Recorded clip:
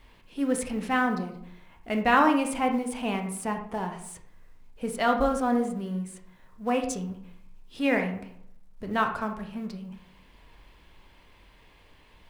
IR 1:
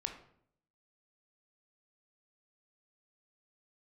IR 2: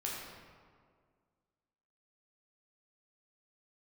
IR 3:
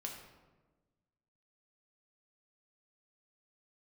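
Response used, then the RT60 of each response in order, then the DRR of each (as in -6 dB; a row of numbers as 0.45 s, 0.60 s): 1; 0.65 s, 1.9 s, 1.3 s; 4.0 dB, -4.5 dB, 0.0 dB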